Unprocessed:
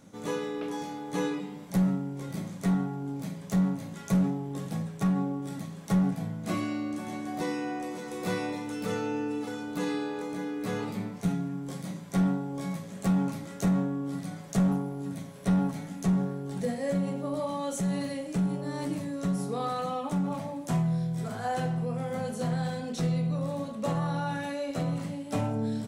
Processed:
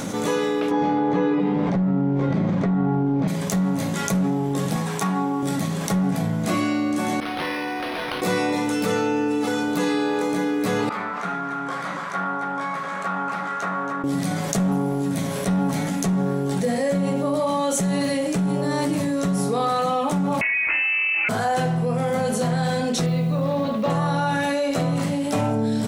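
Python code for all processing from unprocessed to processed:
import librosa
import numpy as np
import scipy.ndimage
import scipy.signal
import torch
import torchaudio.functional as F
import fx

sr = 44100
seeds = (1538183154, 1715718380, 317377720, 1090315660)

y = fx.chain(x, sr, fx.spacing_loss(db_at_10k=39),
    fx.env_flatten(amount_pct=70), at=(0.71, 3.28))
y = fx.chain(y, sr, fx.highpass(hz=400.0, slope=6),
    fx.peak_eq(hz=960.0, db=5.5, octaves=0.37),
    fx.notch(hz=580.0, q=5.0), at=(4.76, 5.43))
y = fx.chain(y, sr, fx.pre_emphasis(coefficient=0.9),
    fx.resample_linear(factor=6), at=(7.2, 8.22))
y = fx.chain(y, sr, fx.bandpass_q(hz=1300.0, q=3.0),
    fx.echo_single(ms=275, db=-10.0), at=(10.89, 14.04))
y = fx.chain(y, sr, fx.highpass(hz=260.0, slope=12),
    fx.freq_invert(carrier_hz=2800),
    fx.env_flatten(amount_pct=70), at=(20.41, 21.29))
y = fx.chain(y, sr, fx.lowpass(hz=4600.0, slope=24),
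    fx.quant_companded(bits=8), at=(23.06, 23.9))
y = fx.low_shelf(y, sr, hz=190.0, db=-6.5)
y = fx.env_flatten(y, sr, amount_pct=70)
y = y * librosa.db_to_amplitude(5.0)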